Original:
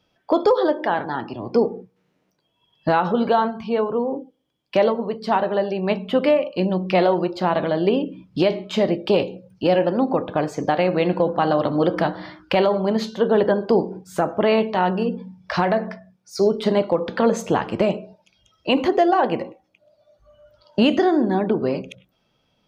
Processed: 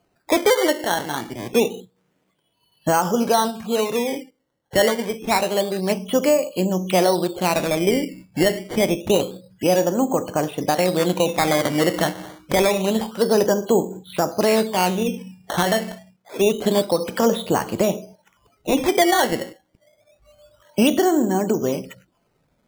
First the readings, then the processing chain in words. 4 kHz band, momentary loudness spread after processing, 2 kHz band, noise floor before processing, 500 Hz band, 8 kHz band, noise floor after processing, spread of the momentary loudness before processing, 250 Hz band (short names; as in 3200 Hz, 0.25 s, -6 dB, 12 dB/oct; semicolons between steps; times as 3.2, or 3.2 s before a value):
+4.5 dB, 9 LU, +2.5 dB, -69 dBFS, -0.5 dB, n/a, -68 dBFS, 9 LU, 0.0 dB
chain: nonlinear frequency compression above 2900 Hz 4:1; decimation with a swept rate 12×, swing 100% 0.27 Hz